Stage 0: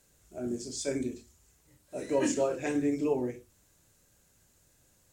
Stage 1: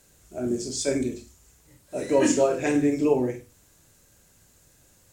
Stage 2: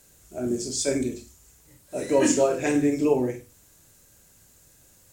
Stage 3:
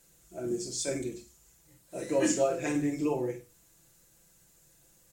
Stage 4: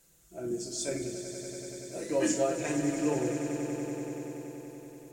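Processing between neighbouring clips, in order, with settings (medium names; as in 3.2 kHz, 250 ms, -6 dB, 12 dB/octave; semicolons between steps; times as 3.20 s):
flutter echo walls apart 8.1 m, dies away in 0.26 s; trim +7 dB
treble shelf 7.9 kHz +6 dB
comb 5.9 ms; trim -7.5 dB
echo with a slow build-up 95 ms, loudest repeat 5, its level -12.5 dB; trim -1.5 dB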